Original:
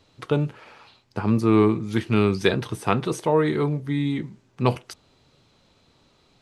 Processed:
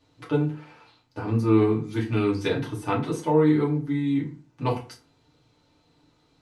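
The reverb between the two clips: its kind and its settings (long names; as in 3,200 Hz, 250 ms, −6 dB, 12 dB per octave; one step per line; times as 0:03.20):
feedback delay network reverb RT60 0.37 s, low-frequency decay 1.2×, high-frequency decay 0.65×, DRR −4.5 dB
level −10 dB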